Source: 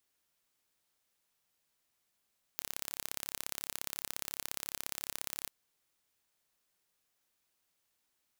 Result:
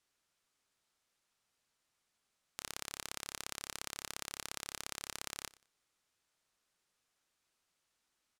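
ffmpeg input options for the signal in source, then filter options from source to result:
-f lavfi -i "aevalsrc='0.355*eq(mod(n,1286),0)*(0.5+0.5*eq(mod(n,2572),0))':d=2.89:s=44100"
-af "lowpass=9100,equalizer=f=1300:t=o:w=0.42:g=3,aecho=1:1:90|180:0.0944|0.0227"

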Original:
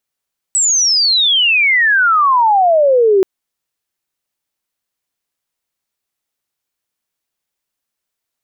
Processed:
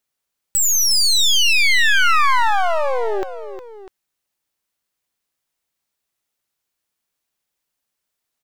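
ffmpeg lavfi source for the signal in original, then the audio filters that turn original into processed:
-f lavfi -i "aevalsrc='pow(10,(-10+3*t/2.68)/20)*sin(2*PI*8000*2.68/log(370/8000)*(exp(log(370/8000)*t/2.68)-1))':d=2.68:s=44100"
-filter_complex "[0:a]acrossover=split=1000[s0][s1];[s0]acompressor=threshold=0.112:ratio=6[s2];[s2][s1]amix=inputs=2:normalize=0,aeval=exprs='clip(val(0),-1,0.0398)':c=same,aecho=1:1:360|648:0.266|0.158"

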